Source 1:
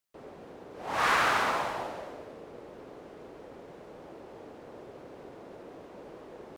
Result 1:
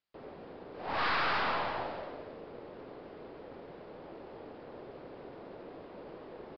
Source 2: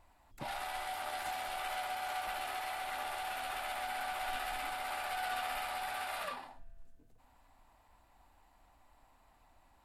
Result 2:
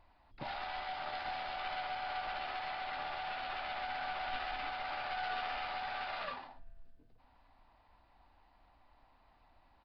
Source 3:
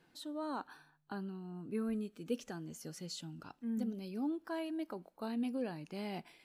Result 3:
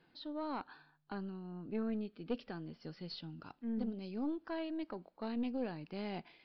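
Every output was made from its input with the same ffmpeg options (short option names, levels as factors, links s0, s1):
-af "aeval=exprs='(tanh(28.2*val(0)+0.5)-tanh(0.5))/28.2':c=same,aresample=11025,aresample=44100,volume=1.19"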